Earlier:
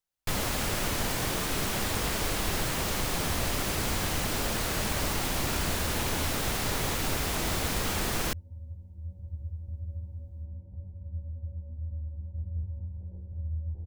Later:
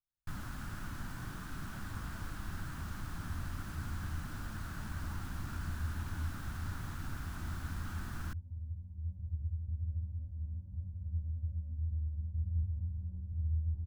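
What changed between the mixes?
first sound -8.5 dB; master: add FFT filter 150 Hz 0 dB, 300 Hz -5 dB, 460 Hz -21 dB, 1.5 kHz 0 dB, 2.1 kHz -14 dB

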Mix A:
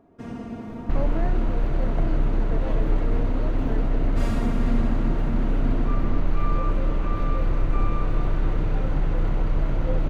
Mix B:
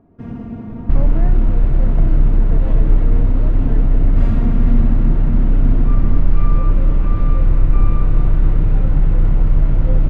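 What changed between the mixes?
first sound: add treble shelf 4.7 kHz -10 dB; master: add tone controls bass +10 dB, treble -6 dB

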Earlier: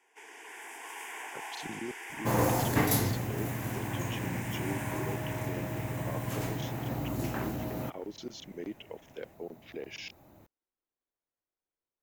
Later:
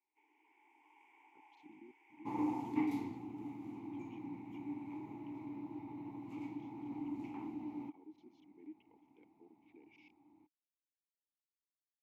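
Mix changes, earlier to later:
speech -8.5 dB; first sound -11.0 dB; master: add vowel filter u

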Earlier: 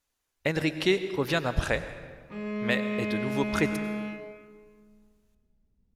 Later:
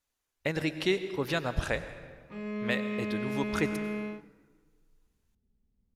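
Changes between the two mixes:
speech -3.5 dB; background: send off

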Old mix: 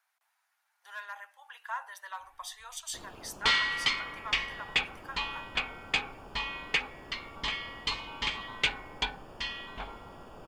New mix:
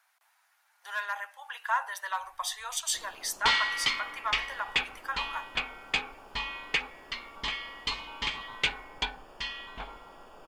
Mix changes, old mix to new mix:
speech +8.5 dB; first sound: add peaking EQ 97 Hz -14.5 dB 2.8 oct

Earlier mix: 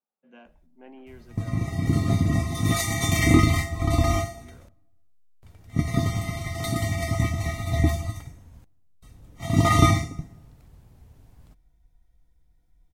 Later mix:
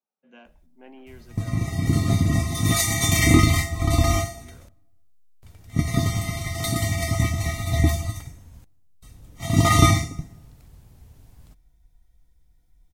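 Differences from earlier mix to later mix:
background: add bass shelf 150 Hz +3 dB; master: add treble shelf 2.8 kHz +7.5 dB

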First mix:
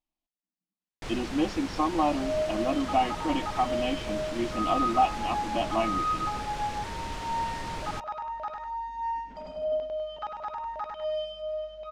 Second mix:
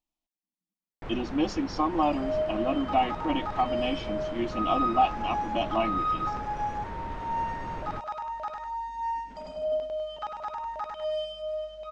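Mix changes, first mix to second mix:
first sound: add low-pass 1.5 kHz 12 dB/octave; master: remove distance through air 81 m

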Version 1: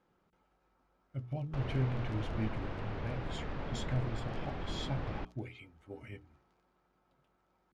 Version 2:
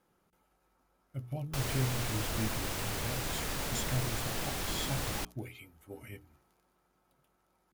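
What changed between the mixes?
background: remove tape spacing loss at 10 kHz 36 dB; master: remove distance through air 130 m

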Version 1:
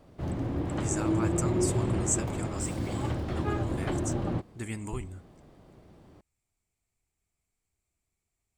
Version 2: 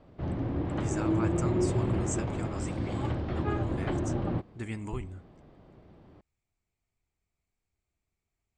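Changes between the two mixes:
background: add low-pass 5 kHz 12 dB/octave; master: add distance through air 96 m

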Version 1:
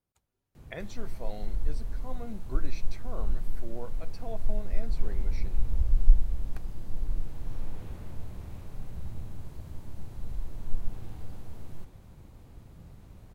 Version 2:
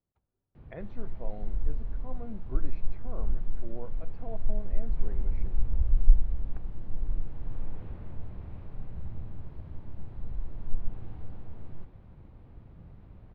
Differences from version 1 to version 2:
speech: add treble shelf 2.1 kHz -11 dB; master: add distance through air 400 m

